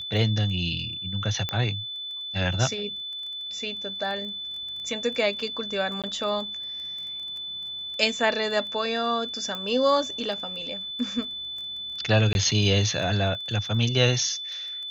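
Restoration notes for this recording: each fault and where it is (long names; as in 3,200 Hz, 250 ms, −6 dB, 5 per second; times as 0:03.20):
surface crackle 10 per second −34 dBFS
whistle 3,500 Hz −32 dBFS
0:01.49: click −13 dBFS
0:06.02–0:06.04: drop-out 17 ms
0:09.55: click −19 dBFS
0:12.33–0:12.35: drop-out 21 ms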